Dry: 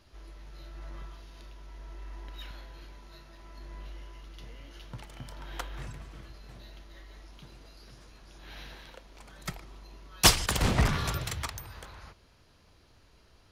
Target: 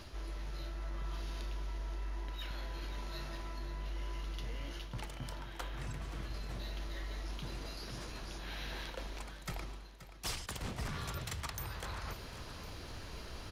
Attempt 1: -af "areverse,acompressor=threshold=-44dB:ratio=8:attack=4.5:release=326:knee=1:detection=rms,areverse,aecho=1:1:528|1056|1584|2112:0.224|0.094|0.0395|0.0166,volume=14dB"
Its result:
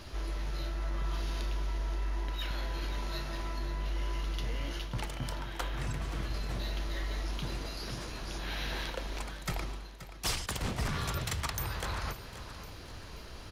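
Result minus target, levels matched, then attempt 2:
compressor: peak gain reduction -6.5 dB
-af "areverse,acompressor=threshold=-51.5dB:ratio=8:attack=4.5:release=326:knee=1:detection=rms,areverse,aecho=1:1:528|1056|1584|2112:0.224|0.094|0.0395|0.0166,volume=14dB"

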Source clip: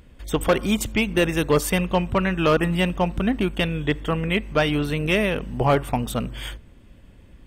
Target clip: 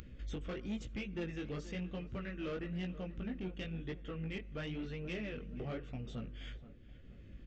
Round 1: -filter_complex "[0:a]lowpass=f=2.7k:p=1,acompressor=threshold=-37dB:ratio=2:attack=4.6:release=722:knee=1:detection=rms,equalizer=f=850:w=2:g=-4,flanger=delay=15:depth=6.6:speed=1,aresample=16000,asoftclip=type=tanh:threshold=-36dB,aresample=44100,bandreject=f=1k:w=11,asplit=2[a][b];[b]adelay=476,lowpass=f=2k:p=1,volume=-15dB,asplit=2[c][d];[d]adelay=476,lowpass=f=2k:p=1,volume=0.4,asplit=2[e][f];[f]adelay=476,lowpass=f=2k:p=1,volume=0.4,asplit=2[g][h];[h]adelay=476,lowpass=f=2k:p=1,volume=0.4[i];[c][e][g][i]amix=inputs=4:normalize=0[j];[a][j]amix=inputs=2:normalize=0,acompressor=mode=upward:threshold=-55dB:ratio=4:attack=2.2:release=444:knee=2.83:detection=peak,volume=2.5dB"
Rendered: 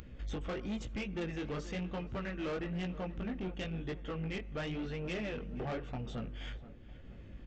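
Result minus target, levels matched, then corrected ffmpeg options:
1000 Hz band +4.5 dB; compressor: peak gain reduction -4 dB
-filter_complex "[0:a]lowpass=f=2.7k:p=1,acompressor=threshold=-45dB:ratio=2:attack=4.6:release=722:knee=1:detection=rms,equalizer=f=850:w=2:g=-16,flanger=delay=15:depth=6.6:speed=1,aresample=16000,asoftclip=type=tanh:threshold=-36dB,aresample=44100,bandreject=f=1k:w=11,asplit=2[a][b];[b]adelay=476,lowpass=f=2k:p=1,volume=-15dB,asplit=2[c][d];[d]adelay=476,lowpass=f=2k:p=1,volume=0.4,asplit=2[e][f];[f]adelay=476,lowpass=f=2k:p=1,volume=0.4,asplit=2[g][h];[h]adelay=476,lowpass=f=2k:p=1,volume=0.4[i];[c][e][g][i]amix=inputs=4:normalize=0[j];[a][j]amix=inputs=2:normalize=0,acompressor=mode=upward:threshold=-55dB:ratio=4:attack=2.2:release=444:knee=2.83:detection=peak,volume=2.5dB"

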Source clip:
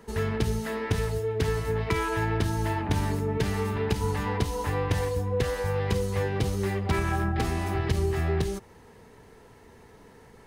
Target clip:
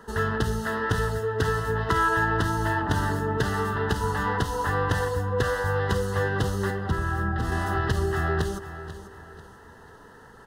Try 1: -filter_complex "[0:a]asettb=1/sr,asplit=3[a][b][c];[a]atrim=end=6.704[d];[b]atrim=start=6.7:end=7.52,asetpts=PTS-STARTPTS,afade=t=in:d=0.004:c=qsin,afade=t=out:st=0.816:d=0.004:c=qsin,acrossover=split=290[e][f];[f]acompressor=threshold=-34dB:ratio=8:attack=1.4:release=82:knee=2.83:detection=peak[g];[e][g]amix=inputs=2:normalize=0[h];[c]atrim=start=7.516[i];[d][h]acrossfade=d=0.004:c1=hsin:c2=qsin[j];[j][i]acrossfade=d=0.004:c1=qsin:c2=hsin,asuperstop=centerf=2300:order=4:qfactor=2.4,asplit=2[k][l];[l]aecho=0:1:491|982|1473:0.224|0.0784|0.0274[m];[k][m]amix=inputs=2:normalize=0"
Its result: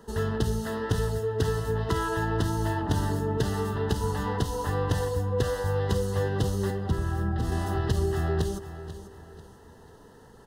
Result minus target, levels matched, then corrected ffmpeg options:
2000 Hz band -7.5 dB
-filter_complex "[0:a]asettb=1/sr,asplit=3[a][b][c];[a]atrim=end=6.704[d];[b]atrim=start=6.7:end=7.52,asetpts=PTS-STARTPTS,afade=t=in:d=0.004:c=qsin,afade=t=out:st=0.816:d=0.004:c=qsin,acrossover=split=290[e][f];[f]acompressor=threshold=-34dB:ratio=8:attack=1.4:release=82:knee=2.83:detection=peak[g];[e][g]amix=inputs=2:normalize=0[h];[c]atrim=start=7.516[i];[d][h]acrossfade=d=0.004:c1=hsin:c2=qsin[j];[j][i]acrossfade=d=0.004:c1=qsin:c2=hsin,asuperstop=centerf=2300:order=4:qfactor=2.4,equalizer=f=1.5k:w=1.1:g=11,asplit=2[k][l];[l]aecho=0:1:491|982|1473:0.224|0.0784|0.0274[m];[k][m]amix=inputs=2:normalize=0"

